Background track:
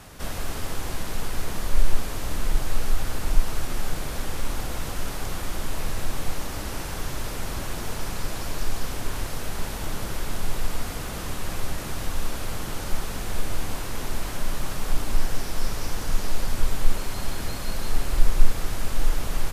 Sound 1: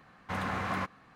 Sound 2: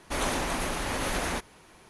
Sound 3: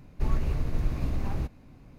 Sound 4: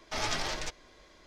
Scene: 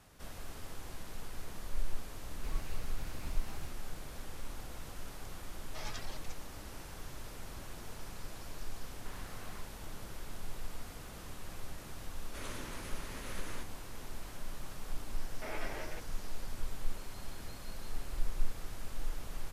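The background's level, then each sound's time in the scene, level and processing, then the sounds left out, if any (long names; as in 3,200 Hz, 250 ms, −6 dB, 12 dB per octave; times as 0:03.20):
background track −15.5 dB
0:02.23: mix in 3 −11 dB + tilt shelving filter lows −8 dB, about 1,200 Hz
0:05.63: mix in 4 −12 dB + reverb reduction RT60 1.5 s
0:08.76: mix in 1 −13.5 dB + hard clipping −38 dBFS
0:12.23: mix in 2 −15.5 dB + parametric band 760 Hz −13.5 dB 0.31 octaves
0:15.30: mix in 4 −3.5 dB + loudspeaker in its box 270–2,200 Hz, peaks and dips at 840 Hz −7 dB, 1,200 Hz −8 dB, 1,800 Hz −4 dB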